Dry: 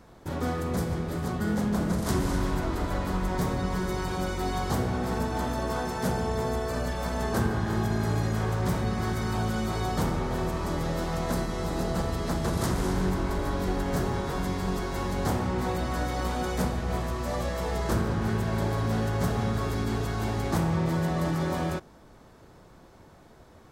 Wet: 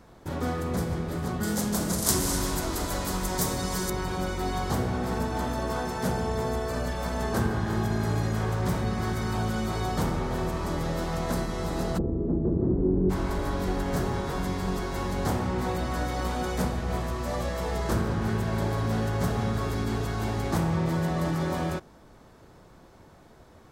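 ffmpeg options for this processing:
-filter_complex "[0:a]asettb=1/sr,asplit=3[a][b][c];[a]atrim=end=1.434[d];[b]atrim=start=1.43:end=3.9,asetpts=PTS-STARTPTS,afade=t=in:d=0.004:c=qsin,afade=t=out:st=2.466:d=0.004:c=qsin,bass=f=250:g=-3,treble=f=4k:g=15[e];[c]atrim=start=3.896[f];[d][e]acrossfade=d=0.004:c1=hsin:c2=qsin[g];[g][f]acrossfade=d=0.004:c1=qsin:c2=hsin,asplit=3[h][i][j];[h]afade=t=out:st=11.97:d=0.02[k];[i]lowpass=f=350:t=q:w=2.6,afade=t=in:st=11.97:d=0.02,afade=t=out:st=13.09:d=0.02[l];[j]afade=t=in:st=13.09:d=0.02[m];[k][l][m]amix=inputs=3:normalize=0"

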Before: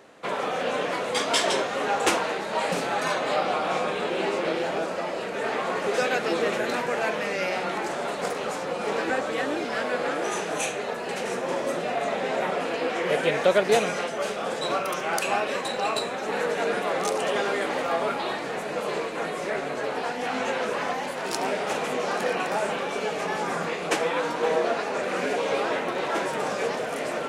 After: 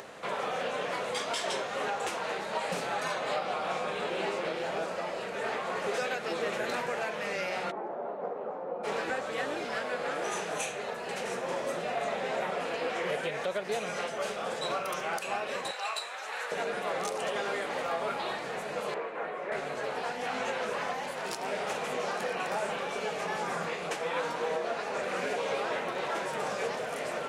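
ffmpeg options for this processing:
-filter_complex "[0:a]asplit=3[a][b][c];[a]afade=t=out:st=7.7:d=0.02[d];[b]asuperpass=centerf=450:order=4:qfactor=0.65,afade=t=in:st=7.7:d=0.02,afade=t=out:st=8.83:d=0.02[e];[c]afade=t=in:st=8.83:d=0.02[f];[d][e][f]amix=inputs=3:normalize=0,asettb=1/sr,asplit=3[g][h][i];[g]atrim=end=15.714[j];[h]atrim=start=15.71:end=16.52,asetpts=PTS-STARTPTS,afade=t=in:d=0.004:c=qsin,afade=t=out:st=0.806:d=0.004:c=qsin,highpass=940[k];[i]atrim=start=16.516[l];[j][k]acrossfade=d=0.004:c1=hsin:c2=qsin[m];[m][l]acrossfade=d=0.004:c1=qsin:c2=hsin,asettb=1/sr,asplit=3[n][o][p];[n]atrim=end=18.944[q];[o]atrim=start=18.94:end=19.52,asetpts=PTS-STARTPTS,afade=t=in:d=0.004:c=qsin,afade=t=out:st=0.576:d=0.004:c=qsin,acrossover=split=260 2500:gain=0.251 1 0.0891[r][s][t];[r][s][t]amix=inputs=3:normalize=0[u];[p]atrim=start=19.516[v];[q][u]acrossfade=d=0.004:c1=hsin:c2=qsin[w];[w][v]acrossfade=d=0.004:c1=qsin:c2=hsin,equalizer=f=290:w=2.1:g=-6.5,acompressor=mode=upward:threshold=-32dB:ratio=2.5,alimiter=limit=-17.5dB:level=0:latency=1:release=230,volume=-4.5dB"

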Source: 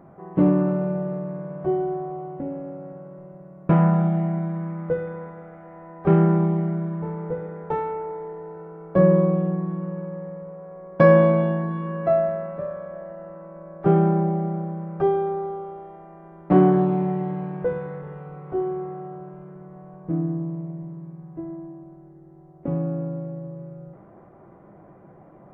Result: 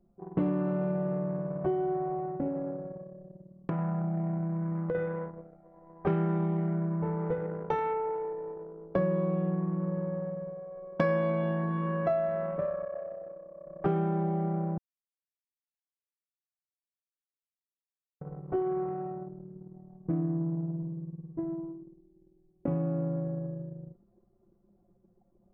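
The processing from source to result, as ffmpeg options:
-filter_complex "[0:a]asettb=1/sr,asplit=3[a][b][c];[a]atrim=end=2.494[d];[b]atrim=start=2.49:end=4.95,asetpts=PTS-STARTPTS,afade=t=in:d=0.004:c=qsin,afade=t=out:st=2.456:d=0.004:c=qsin,acompressor=threshold=-27dB:ratio=6:attack=3.2:release=140:knee=1:detection=peak[e];[c]atrim=start=4.946[f];[d][e]acrossfade=d=0.004:c1=hsin:c2=qsin[g];[g][f]acrossfade=d=0.004:c1=qsin:c2=hsin,asettb=1/sr,asplit=3[h][i][j];[h]atrim=end=7.214[k];[i]atrim=start=7.21:end=7.94,asetpts=PTS-STARTPTS,afade=t=in:d=0.004:c=qsin,afade=t=out:st=0.726:d=0.004:c=qsin,highshelf=f=2.1k:g=5[l];[j]atrim=start=7.936[m];[k][l]acrossfade=d=0.004:c1=hsin:c2=qsin[n];[n][m]acrossfade=d=0.004:c1=qsin:c2=hsin,asettb=1/sr,asplit=3[o][p][q];[o]atrim=end=12.854[r];[p]atrim=start=12.85:end=13.67,asetpts=PTS-STARTPTS,afade=t=in:d=0.004:c=qsin,afade=t=out:st=0.816:d=0.004:c=qsin,highpass=f=180:p=1[s];[q]atrim=start=13.666[t];[r][s]acrossfade=d=0.004:c1=hsin:c2=qsin[u];[u][t]acrossfade=d=0.004:c1=qsin:c2=hsin,asplit=3[v][w][x];[v]atrim=end=14.78,asetpts=PTS-STARTPTS,afade=t=out:st=14.776:d=0.004:c=hsin[y];[w]atrim=start=14.78:end=18.21,asetpts=PTS-STARTPTS,volume=0[z];[x]atrim=start=18.21,asetpts=PTS-STARTPTS,afade=t=in:d=0.004:c=hsin[aa];[y][z][aa]concat=n=3:v=0:a=1,anlmdn=6.31,highshelf=f=2.3k:g=10.5,acompressor=threshold=-27dB:ratio=4"

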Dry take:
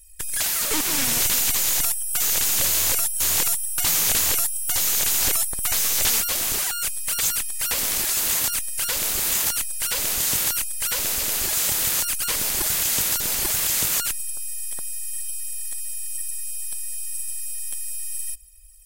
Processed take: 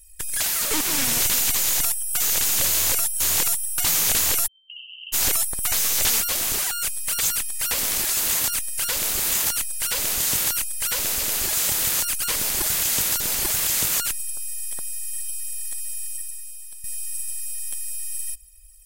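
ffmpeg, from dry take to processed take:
-filter_complex "[0:a]asplit=3[a][b][c];[a]afade=t=out:st=4.46:d=0.02[d];[b]asuperpass=centerf=2900:order=20:qfactor=6,afade=t=in:st=4.46:d=0.02,afade=t=out:st=5.12:d=0.02[e];[c]afade=t=in:st=5.12:d=0.02[f];[d][e][f]amix=inputs=3:normalize=0,asplit=2[g][h];[g]atrim=end=16.84,asetpts=PTS-STARTPTS,afade=t=out:st=16.04:d=0.8:c=qua:silence=0.316228[i];[h]atrim=start=16.84,asetpts=PTS-STARTPTS,afade=t=in:d=0.004:c=hsin:silence=0.316228[j];[i][j]concat=n=2:v=0:a=1"

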